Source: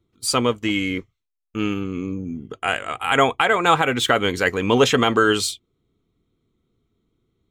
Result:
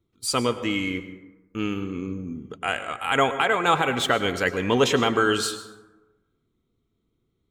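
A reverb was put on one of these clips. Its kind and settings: plate-style reverb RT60 1.1 s, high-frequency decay 0.45×, pre-delay 90 ms, DRR 11 dB; gain -4 dB

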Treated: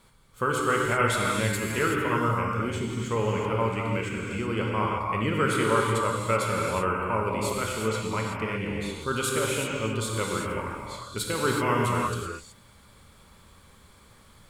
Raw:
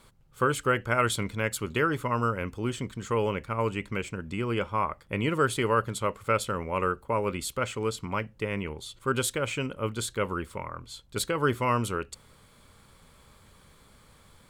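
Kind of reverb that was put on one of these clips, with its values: non-linear reverb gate 0.4 s flat, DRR -2.5 dB; gain -2 dB

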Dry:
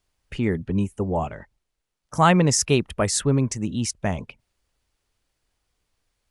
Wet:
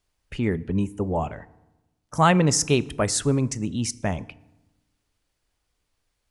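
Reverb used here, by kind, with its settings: FDN reverb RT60 1 s, low-frequency decay 1.3×, high-frequency decay 0.65×, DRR 17.5 dB; gain -1 dB

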